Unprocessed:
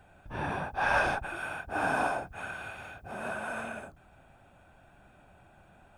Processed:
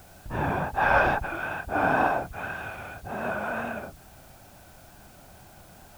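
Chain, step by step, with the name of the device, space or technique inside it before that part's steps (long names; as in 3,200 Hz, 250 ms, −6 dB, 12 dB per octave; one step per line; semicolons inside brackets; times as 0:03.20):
cassette deck with a dirty head (head-to-tape spacing loss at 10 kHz 22 dB; tape wow and flutter; white noise bed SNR 27 dB)
level +8 dB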